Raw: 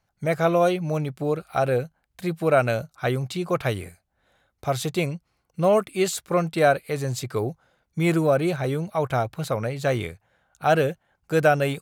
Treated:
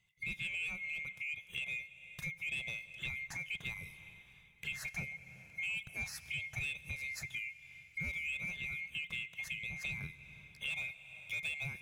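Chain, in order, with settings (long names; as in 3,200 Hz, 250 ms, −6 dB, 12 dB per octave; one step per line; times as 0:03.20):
neighbouring bands swapped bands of 2,000 Hz
soft clipping −12.5 dBFS, distortion −18 dB
low shelf with overshoot 210 Hz +10.5 dB, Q 3
dense smooth reverb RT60 2.6 s, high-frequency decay 0.8×, DRR 17.5 dB
downward compressor 3 to 1, threshold −39 dBFS, peak gain reduction 16.5 dB
level −4 dB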